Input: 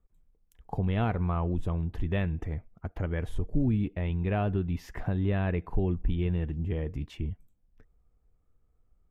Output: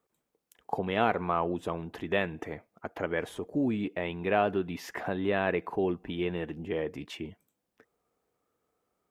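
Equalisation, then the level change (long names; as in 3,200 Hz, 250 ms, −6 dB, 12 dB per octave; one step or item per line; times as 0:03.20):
high-pass filter 360 Hz 12 dB per octave
+7.0 dB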